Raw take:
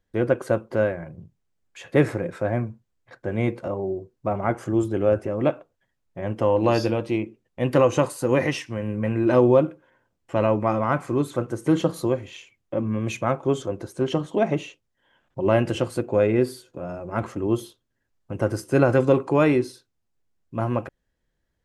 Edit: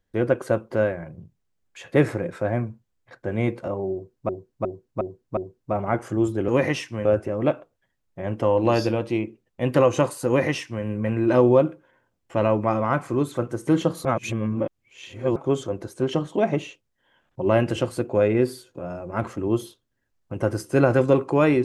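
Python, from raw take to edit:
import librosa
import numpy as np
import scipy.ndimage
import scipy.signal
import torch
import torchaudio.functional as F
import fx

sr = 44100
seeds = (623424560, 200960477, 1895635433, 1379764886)

y = fx.edit(x, sr, fx.repeat(start_s=3.93, length_s=0.36, count=5),
    fx.duplicate(start_s=8.26, length_s=0.57, to_s=5.04),
    fx.reverse_span(start_s=12.04, length_s=1.31), tone=tone)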